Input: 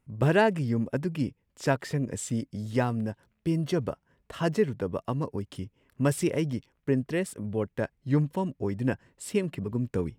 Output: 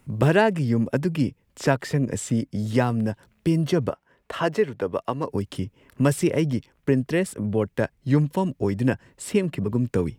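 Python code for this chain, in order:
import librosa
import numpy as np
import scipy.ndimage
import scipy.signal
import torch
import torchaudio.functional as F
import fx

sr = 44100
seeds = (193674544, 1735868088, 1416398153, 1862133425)

y = fx.bass_treble(x, sr, bass_db=-12, treble_db=-6, at=(3.89, 5.29))
y = fx.band_squash(y, sr, depth_pct=40)
y = y * 10.0 ** (5.5 / 20.0)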